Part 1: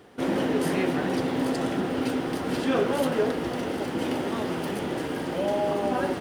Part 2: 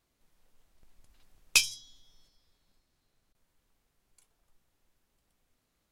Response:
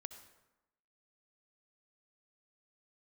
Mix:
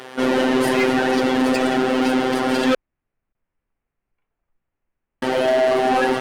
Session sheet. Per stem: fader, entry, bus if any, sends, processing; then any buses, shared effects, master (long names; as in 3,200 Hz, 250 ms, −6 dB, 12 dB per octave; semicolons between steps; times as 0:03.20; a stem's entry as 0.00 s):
+1.0 dB, 0.00 s, muted 0:02.75–0:05.22, no send, phases set to zero 129 Hz; mid-hump overdrive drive 26 dB, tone 7,300 Hz, clips at −9 dBFS
−4.0 dB, 0.00 s, no send, Butterworth low-pass 2,600 Hz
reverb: not used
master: no processing